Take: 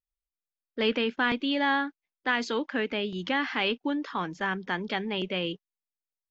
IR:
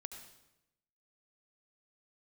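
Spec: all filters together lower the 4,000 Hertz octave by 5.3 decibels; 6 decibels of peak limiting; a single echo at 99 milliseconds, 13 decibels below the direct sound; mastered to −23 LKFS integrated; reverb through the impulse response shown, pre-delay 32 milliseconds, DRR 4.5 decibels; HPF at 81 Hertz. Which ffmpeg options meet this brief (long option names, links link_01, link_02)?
-filter_complex "[0:a]highpass=81,equalizer=frequency=4000:width_type=o:gain=-8,alimiter=limit=-20dB:level=0:latency=1,aecho=1:1:99:0.224,asplit=2[link_01][link_02];[1:a]atrim=start_sample=2205,adelay=32[link_03];[link_02][link_03]afir=irnorm=-1:irlink=0,volume=-0.5dB[link_04];[link_01][link_04]amix=inputs=2:normalize=0,volume=7dB"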